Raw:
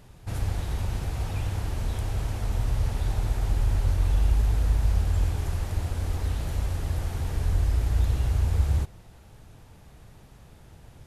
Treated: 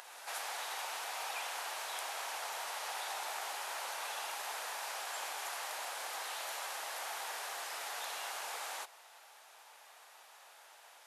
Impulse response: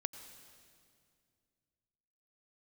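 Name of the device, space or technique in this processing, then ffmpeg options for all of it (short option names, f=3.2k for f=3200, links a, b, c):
ghost voice: -filter_complex "[0:a]areverse[a];[1:a]atrim=start_sample=2205[b];[a][b]afir=irnorm=-1:irlink=0,areverse,highpass=f=730:w=0.5412,highpass=f=730:w=1.3066,volume=4dB"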